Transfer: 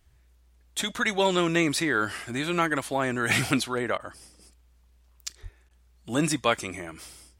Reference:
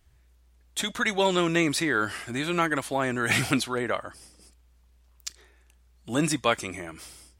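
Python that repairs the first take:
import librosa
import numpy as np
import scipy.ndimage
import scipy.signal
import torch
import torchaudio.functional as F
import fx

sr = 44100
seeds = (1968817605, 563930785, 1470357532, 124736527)

y = fx.fix_deplosive(x, sr, at_s=(5.42,))
y = fx.fix_interpolate(y, sr, at_s=(3.98, 5.69), length_ms=16.0)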